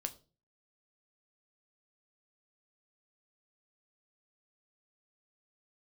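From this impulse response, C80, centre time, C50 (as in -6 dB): 22.0 dB, 5 ms, 18.0 dB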